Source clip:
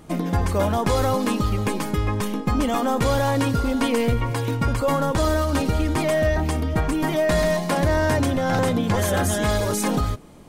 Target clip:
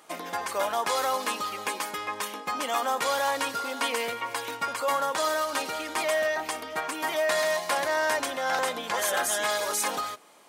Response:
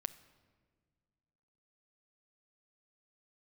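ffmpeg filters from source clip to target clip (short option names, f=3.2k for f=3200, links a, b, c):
-af "highpass=780"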